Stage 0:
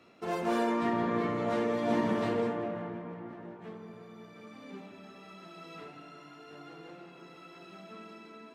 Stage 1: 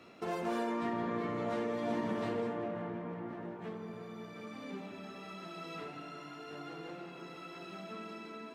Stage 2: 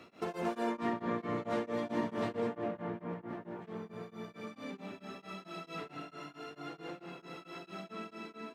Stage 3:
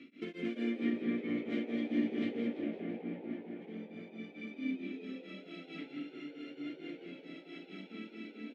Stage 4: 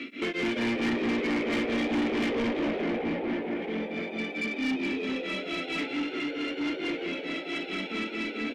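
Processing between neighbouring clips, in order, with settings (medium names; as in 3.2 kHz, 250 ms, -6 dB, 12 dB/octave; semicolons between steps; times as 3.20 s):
compression 2:1, threshold -43 dBFS, peak gain reduction 10.5 dB; trim +3.5 dB
tremolo of two beating tones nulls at 4.5 Hz; trim +3 dB
vowel filter i; frequency-shifting echo 169 ms, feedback 63%, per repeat +84 Hz, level -13 dB; trim +12 dB
overdrive pedal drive 29 dB, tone 3.7 kHz, clips at -20 dBFS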